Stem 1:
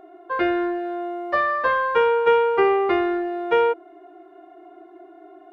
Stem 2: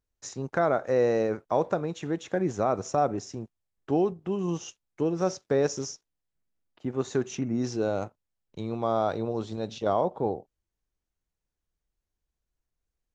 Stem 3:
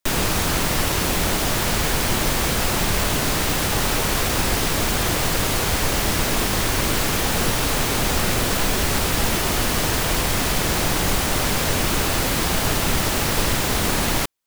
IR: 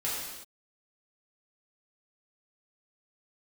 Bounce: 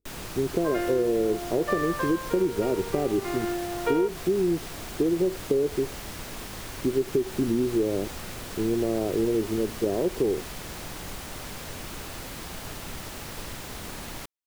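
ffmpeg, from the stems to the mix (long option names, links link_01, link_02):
-filter_complex "[0:a]adelay=350,volume=4dB,afade=type=out:start_time=1.87:duration=0.45:silence=0.334965,afade=type=in:start_time=3.21:duration=0.29:silence=0.266073[link_01];[1:a]lowpass=frequency=380:width_type=q:width=4.2,acompressor=threshold=-22dB:ratio=2,volume=2dB[link_02];[2:a]volume=-17dB[link_03];[link_01][link_02][link_03]amix=inputs=3:normalize=0,acompressor=threshold=-20dB:ratio=6"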